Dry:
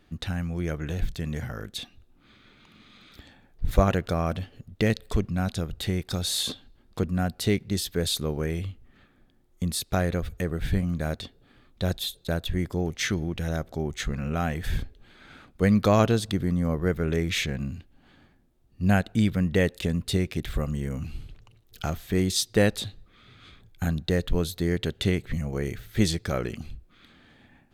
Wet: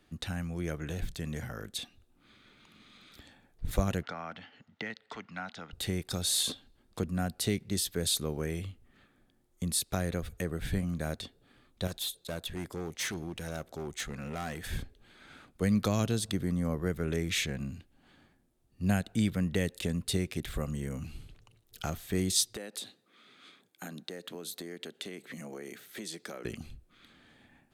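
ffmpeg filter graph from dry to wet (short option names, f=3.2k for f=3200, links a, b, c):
-filter_complex "[0:a]asettb=1/sr,asplit=3[a][b][c];[a]atrim=end=4.034[d];[b]atrim=start=4.03:end=5.73,asetpts=PTS-STARTPTS,afade=t=in:d=0.004:c=qsin,afade=t=out:st=1.696:d=0.004:c=qsin,acrossover=split=380|820[e][f][g];[e]acompressor=threshold=-31dB:ratio=4[h];[f]acompressor=threshold=-41dB:ratio=4[i];[g]acompressor=threshold=-44dB:ratio=4[j];[h][i][j]amix=inputs=3:normalize=0,highpass=250,equalizer=f=370:t=q:w=4:g=-9,equalizer=f=540:t=q:w=4:g=-5,equalizer=f=860:t=q:w=4:g=8,equalizer=f=1.4k:t=q:w=4:g=9,equalizer=f=2k:t=q:w=4:g=10,equalizer=f=3k:t=q:w=4:g=5,lowpass=f=5.6k:w=0.5412,lowpass=f=5.6k:w=1.3066[k];[c]atrim=start=5.726[l];[d][k]acrossfade=d=0.004:c1=hsin:c2=qsin[m];[m][l]acrossfade=d=0.004:c1=qsin:c2=hsin,asettb=1/sr,asplit=3[n][o][p];[n]atrim=end=11.874[q];[o]atrim=start=11.87:end=14.71,asetpts=PTS-STARTPTS,afade=t=in:d=0.004:c=qsin,afade=t=out:st=2.836:d=0.004:c=qsin,lowshelf=f=180:g=-7.5,asoftclip=type=hard:threshold=-28dB[r];[p]atrim=start=14.706[s];[q][r]acrossfade=d=0.004:c1=hsin:c2=qsin[t];[t][s]acrossfade=d=0.004:c1=qsin:c2=hsin,asettb=1/sr,asplit=3[u][v][w];[u]atrim=end=22.564[x];[v]atrim=start=22.56:end=26.45,asetpts=PTS-STARTPTS,afade=t=in:d=0.004:c=qsin,afade=t=out:st=3.886:d=0.004:c=qsin,highpass=f=210:w=0.5412,highpass=f=210:w=1.3066,acompressor=threshold=-33dB:ratio=8:attack=3.2:release=140:knee=1:detection=peak[y];[w]atrim=start=26.446[z];[x][y]acrossfade=d=0.004:c1=hsin:c2=qsin[aa];[aa][z]acrossfade=d=0.004:c1=qsin:c2=hsin,equalizer=f=9.4k:w=1:g=6.5,acrossover=split=260|3000[ab][ac][ad];[ac]acompressor=threshold=-27dB:ratio=6[ae];[ab][ae][ad]amix=inputs=3:normalize=0,lowshelf=f=110:g=-5.5,volume=-4dB"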